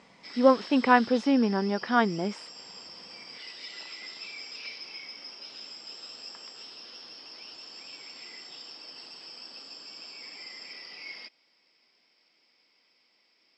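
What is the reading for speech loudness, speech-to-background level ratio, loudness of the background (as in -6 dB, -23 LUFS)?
-24.5 LUFS, 17.0 dB, -41.5 LUFS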